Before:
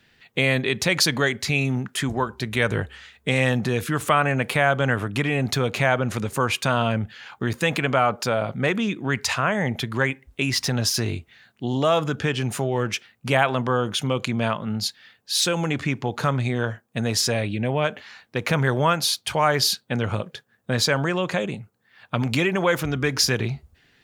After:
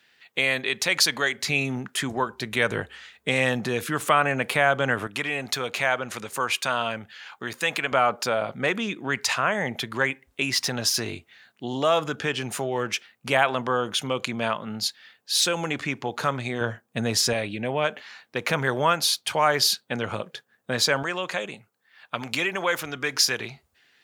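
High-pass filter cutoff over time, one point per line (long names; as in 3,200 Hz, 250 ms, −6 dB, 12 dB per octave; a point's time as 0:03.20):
high-pass filter 6 dB per octave
770 Hz
from 0:01.38 300 Hz
from 0:05.07 870 Hz
from 0:07.92 390 Hz
from 0:16.61 140 Hz
from 0:17.33 350 Hz
from 0:21.03 850 Hz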